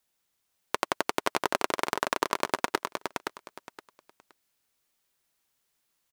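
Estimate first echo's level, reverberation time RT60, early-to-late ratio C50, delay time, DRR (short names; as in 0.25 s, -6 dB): -5.0 dB, none, none, 0.519 s, none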